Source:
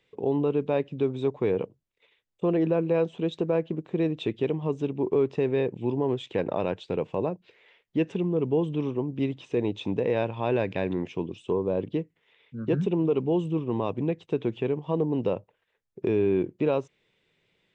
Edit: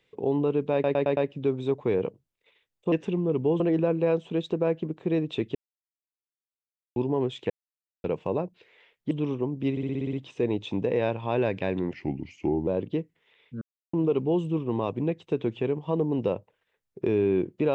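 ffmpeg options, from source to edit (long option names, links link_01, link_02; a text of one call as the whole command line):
ffmpeg -i in.wav -filter_complex "[0:a]asplit=23[link_01][link_02][link_03][link_04][link_05][link_06][link_07][link_08][link_09][link_10][link_11][link_12][link_13][link_14][link_15][link_16][link_17][link_18][link_19][link_20][link_21][link_22][link_23];[link_01]atrim=end=0.842[link_24];[link_02]atrim=start=0.728:end=0.842[link_25];[link_03]atrim=start=0.728:end=0.842[link_26];[link_04]atrim=start=0.728:end=0.842[link_27];[link_05]atrim=start=0.728:end=2.482[link_28];[link_06]atrim=start=7.988:end=8.672[link_29];[link_07]atrim=start=2.478:end=4.43,asetpts=PTS-STARTPTS,afade=type=out:start_time=1.948:duration=0.004:curve=hsin[link_30];[link_08]atrim=start=4.43:end=5.84,asetpts=PTS-STARTPTS,volume=0[link_31];[link_09]atrim=start=5.84:end=6.38,asetpts=PTS-STARTPTS,afade=type=in:duration=0.004:curve=hsin,afade=type=out:start_time=0.536:duration=0.004:curve=hsin[link_32];[link_10]atrim=start=6.38:end=6.92,asetpts=PTS-STARTPTS,volume=0[link_33];[link_11]atrim=start=6.92:end=7.992,asetpts=PTS-STARTPTS,afade=type=in:duration=0.004:curve=hsin[link_34];[link_12]atrim=start=8.668:end=9.332[link_35];[link_13]atrim=start=9.268:end=9.332[link_36];[link_14]atrim=start=9.268:end=9.332[link_37];[link_15]atrim=start=9.268:end=9.332[link_38];[link_16]atrim=start=9.268:end=9.332[link_39];[link_17]atrim=start=9.268:end=9.332[link_40];[link_18]atrim=start=9.268:end=9.332[link_41];[link_19]atrim=start=9.268:end=11.074[link_42];[link_20]atrim=start=11.07:end=11.68,asetpts=PTS-STARTPTS,asetrate=36162,aresample=44100,atrim=end_sample=32806,asetpts=PTS-STARTPTS[link_43];[link_21]atrim=start=11.676:end=12.62,asetpts=PTS-STARTPTS,afade=type=out:start_time=0.94:duration=0.004:curve=hsin[link_44];[link_22]atrim=start=12.62:end=12.94,asetpts=PTS-STARTPTS,volume=0[link_45];[link_23]atrim=start=12.94,asetpts=PTS-STARTPTS,afade=type=in:duration=0.004:curve=hsin[link_46];[link_24][link_25]acrossfade=duration=0.004:curve1=hsin:curve2=hsin[link_47];[link_47][link_26]acrossfade=duration=0.004:curve1=hsin:curve2=hsin[link_48];[link_48][link_27]acrossfade=duration=0.004:curve1=hsin:curve2=hsin[link_49];[link_49][link_28]acrossfade=duration=0.004:curve1=hsin:curve2=hsin[link_50];[link_50][link_29]acrossfade=duration=0.004:curve1=hsin:curve2=hsin[link_51];[link_30][link_31][link_32][link_33][link_34]concat=n=5:v=0:a=1[link_52];[link_51][link_52]acrossfade=duration=0.004:curve1=hsin:curve2=hsin[link_53];[link_53][link_35]acrossfade=duration=0.004:curve1=hsin:curve2=hsin[link_54];[link_54][link_36]acrossfade=duration=0.004:curve1=hsin:curve2=hsin[link_55];[link_55][link_37]acrossfade=duration=0.004:curve1=hsin:curve2=hsin[link_56];[link_56][link_38]acrossfade=duration=0.004:curve1=hsin:curve2=hsin[link_57];[link_57][link_39]acrossfade=duration=0.004:curve1=hsin:curve2=hsin[link_58];[link_58][link_40]acrossfade=duration=0.004:curve1=hsin:curve2=hsin[link_59];[link_59][link_41]acrossfade=duration=0.004:curve1=hsin:curve2=hsin[link_60];[link_60][link_42]acrossfade=duration=0.004:curve1=hsin:curve2=hsin[link_61];[link_61][link_43]acrossfade=duration=0.004:curve1=hsin:curve2=hsin[link_62];[link_44][link_45][link_46]concat=n=3:v=0:a=1[link_63];[link_62][link_63]acrossfade=duration=0.004:curve1=hsin:curve2=hsin" out.wav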